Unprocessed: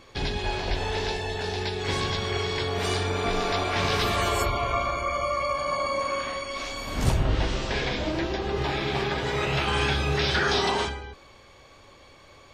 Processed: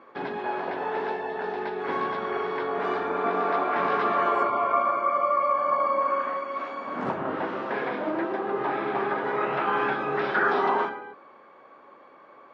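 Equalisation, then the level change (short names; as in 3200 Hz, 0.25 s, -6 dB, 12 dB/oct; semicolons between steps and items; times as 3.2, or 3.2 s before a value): HPF 210 Hz 24 dB/oct; synth low-pass 1300 Hz, resonance Q 1.8; 0.0 dB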